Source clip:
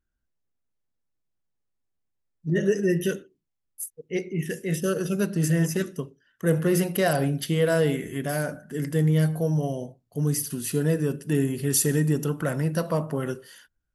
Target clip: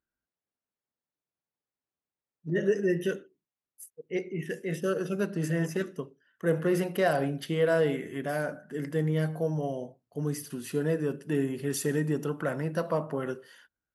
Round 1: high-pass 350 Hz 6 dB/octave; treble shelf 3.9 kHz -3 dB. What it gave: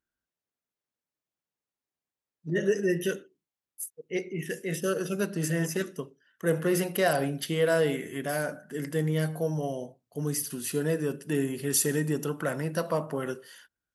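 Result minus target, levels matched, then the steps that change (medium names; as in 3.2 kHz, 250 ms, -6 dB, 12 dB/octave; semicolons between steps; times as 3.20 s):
8 kHz band +9.0 dB
change: treble shelf 3.9 kHz -14.5 dB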